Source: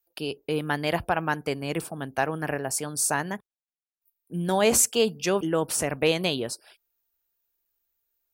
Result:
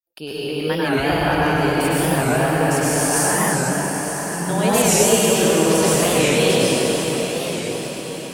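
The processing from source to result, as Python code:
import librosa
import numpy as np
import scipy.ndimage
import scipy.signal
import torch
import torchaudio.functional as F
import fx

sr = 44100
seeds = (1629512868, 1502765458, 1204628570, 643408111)

p1 = fx.fade_in_head(x, sr, length_s=0.57)
p2 = fx.lowpass(p1, sr, hz=4700.0, slope=12, at=(4.83, 5.75))
p3 = fx.over_compress(p2, sr, threshold_db=-37.0, ratio=-1.0)
p4 = p2 + F.gain(torch.from_numpy(p3), -1.0).numpy()
p5 = fx.echo_diffused(p4, sr, ms=988, feedback_pct=43, wet_db=-9.0)
p6 = fx.rev_plate(p5, sr, seeds[0], rt60_s=4.7, hf_ratio=0.8, predelay_ms=90, drr_db=-10.0)
p7 = fx.record_warp(p6, sr, rpm=45.0, depth_cents=160.0)
y = F.gain(torch.from_numpy(p7), -3.0).numpy()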